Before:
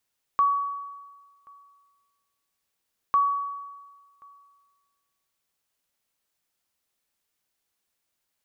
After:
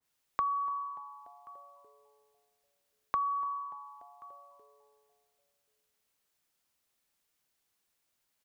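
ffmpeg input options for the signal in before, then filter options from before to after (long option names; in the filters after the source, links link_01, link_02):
-f lavfi -i "aevalsrc='0.168*(sin(2*PI*1130*mod(t,2.75))*exp(-6.91*mod(t,2.75)/1.4)+0.0398*sin(2*PI*1130*max(mod(t,2.75)-1.08,0))*exp(-6.91*max(mod(t,2.75)-1.08,0)/1.4))':duration=5.5:sample_rate=44100"
-filter_complex "[0:a]acrossover=split=140[link_01][link_02];[link_02]acompressor=threshold=-30dB:ratio=5[link_03];[link_01][link_03]amix=inputs=2:normalize=0,asplit=6[link_04][link_05][link_06][link_07][link_08][link_09];[link_05]adelay=291,afreqshift=-140,volume=-21dB[link_10];[link_06]adelay=582,afreqshift=-280,volume=-24.9dB[link_11];[link_07]adelay=873,afreqshift=-420,volume=-28.8dB[link_12];[link_08]adelay=1164,afreqshift=-560,volume=-32.6dB[link_13];[link_09]adelay=1455,afreqshift=-700,volume=-36.5dB[link_14];[link_04][link_10][link_11][link_12][link_13][link_14]amix=inputs=6:normalize=0,adynamicequalizer=threshold=0.00501:dfrequency=1700:dqfactor=0.7:tfrequency=1700:tqfactor=0.7:attack=5:release=100:ratio=0.375:range=2.5:mode=cutabove:tftype=highshelf"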